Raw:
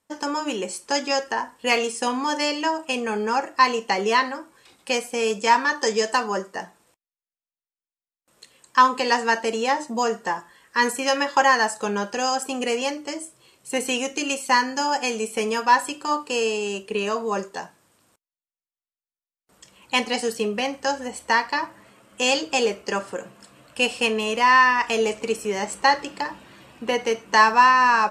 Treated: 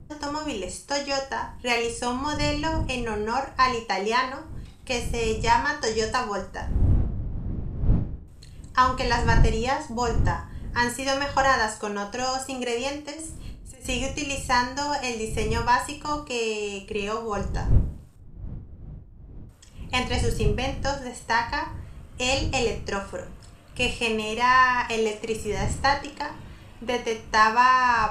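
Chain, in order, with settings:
wind on the microphone 96 Hz −27 dBFS
0:13.11–0:13.85: compressor whose output falls as the input rises −37 dBFS, ratio −1
flutter between parallel walls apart 7 metres, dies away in 0.29 s
level −4 dB

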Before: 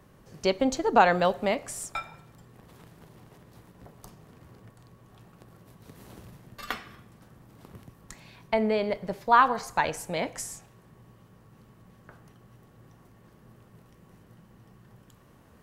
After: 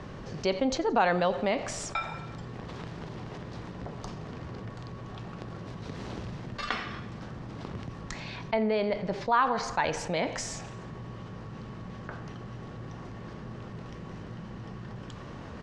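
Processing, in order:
low-pass filter 5,800 Hz 24 dB per octave
repeating echo 86 ms, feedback 54%, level −23 dB
envelope flattener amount 50%
level −6.5 dB

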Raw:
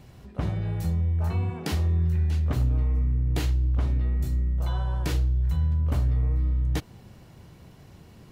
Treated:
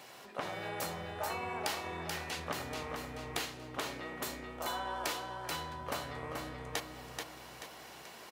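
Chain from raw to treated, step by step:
high-pass filter 650 Hz 12 dB per octave
downward compressor 6 to 1, threshold −42 dBFS, peak gain reduction 10.5 dB
repeating echo 433 ms, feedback 44%, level −4.5 dB
level +7.5 dB

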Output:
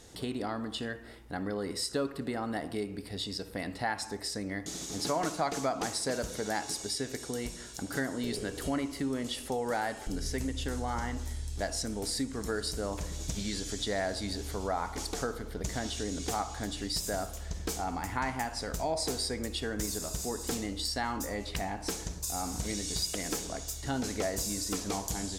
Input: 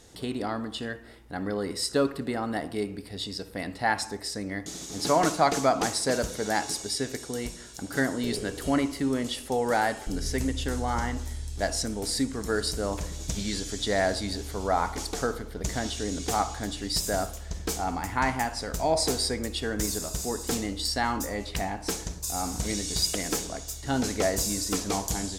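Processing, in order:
downward compressor 2 to 1, threshold −34 dBFS, peak gain reduction 9.5 dB

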